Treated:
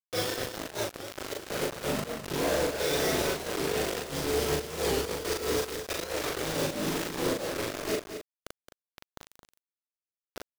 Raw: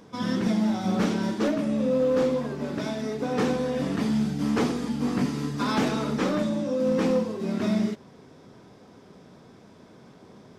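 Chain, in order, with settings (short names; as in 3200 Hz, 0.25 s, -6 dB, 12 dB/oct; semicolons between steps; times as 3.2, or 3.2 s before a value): spectral gate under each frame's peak -10 dB weak; graphic EQ 125/500/1000 Hz -3/+11/-9 dB; negative-ratio compressor -37 dBFS, ratio -0.5; companded quantiser 2-bit; pump 90 bpm, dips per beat 1, -23 dB, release 0.246 s; doubler 39 ms -2 dB; on a send: echo 0.219 s -9.5 dB; on the sum: record warp 45 rpm, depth 160 cents; gain -2.5 dB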